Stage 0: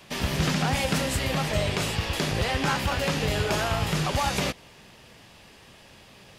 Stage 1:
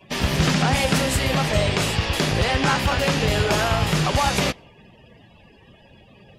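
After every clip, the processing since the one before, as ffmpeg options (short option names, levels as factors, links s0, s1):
-af "afftdn=nr=23:nf=-49,volume=1.88"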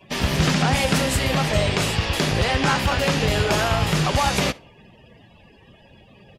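-af "aecho=1:1:65:0.0631"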